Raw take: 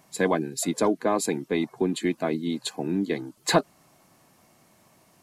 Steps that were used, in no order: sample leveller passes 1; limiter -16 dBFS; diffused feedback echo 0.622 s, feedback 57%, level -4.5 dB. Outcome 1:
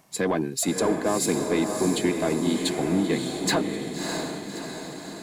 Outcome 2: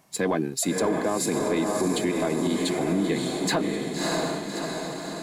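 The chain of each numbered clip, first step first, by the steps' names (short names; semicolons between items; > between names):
limiter > sample leveller > diffused feedback echo; sample leveller > diffused feedback echo > limiter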